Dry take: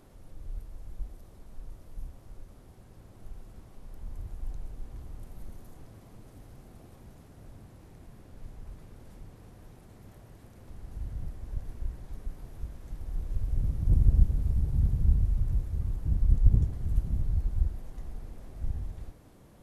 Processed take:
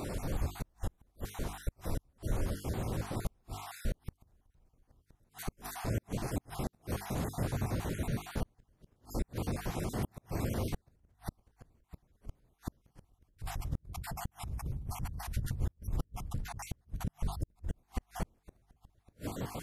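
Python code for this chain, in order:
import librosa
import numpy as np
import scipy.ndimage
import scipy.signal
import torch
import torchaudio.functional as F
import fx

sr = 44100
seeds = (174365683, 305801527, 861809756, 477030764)

y = fx.spec_dropout(x, sr, seeds[0], share_pct=35)
y = fx.highpass(y, sr, hz=72.0, slope=6)
y = fx.over_compress(y, sr, threshold_db=-44.0, ratio=-1.0)
y = fx.hum_notches(y, sr, base_hz=50, count=9)
y = fx.gate_flip(y, sr, shuts_db=-36.0, range_db=-40)
y = y * 10.0 ** (14.0 / 20.0)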